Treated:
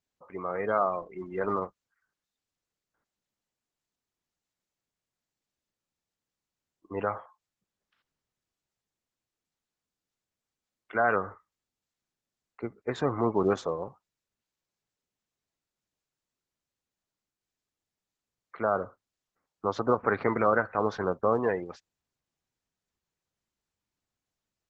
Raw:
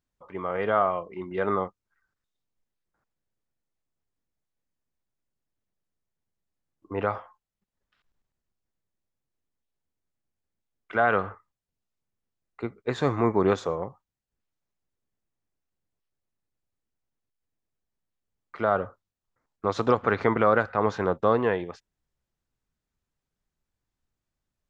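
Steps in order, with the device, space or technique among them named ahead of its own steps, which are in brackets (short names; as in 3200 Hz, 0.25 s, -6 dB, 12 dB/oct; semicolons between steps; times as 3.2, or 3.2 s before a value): noise-suppressed video call (HPF 110 Hz 6 dB/oct; spectral gate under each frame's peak -25 dB strong; gain -2.5 dB; Opus 12 kbps 48000 Hz)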